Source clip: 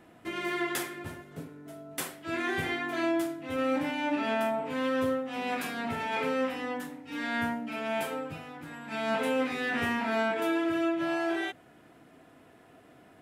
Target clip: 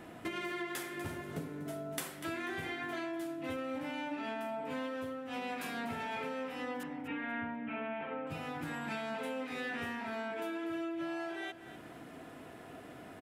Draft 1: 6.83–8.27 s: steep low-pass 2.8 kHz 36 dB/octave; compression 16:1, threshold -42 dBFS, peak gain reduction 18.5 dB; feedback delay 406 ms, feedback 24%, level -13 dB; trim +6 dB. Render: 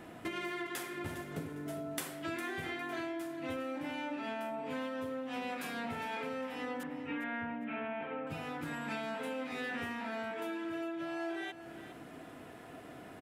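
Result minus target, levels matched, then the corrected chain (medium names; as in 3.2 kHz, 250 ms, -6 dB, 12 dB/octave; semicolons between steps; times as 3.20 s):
echo 162 ms late
6.83–8.27 s: steep low-pass 2.8 kHz 36 dB/octave; compression 16:1, threshold -42 dBFS, peak gain reduction 18.5 dB; feedback delay 244 ms, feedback 24%, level -13 dB; trim +6 dB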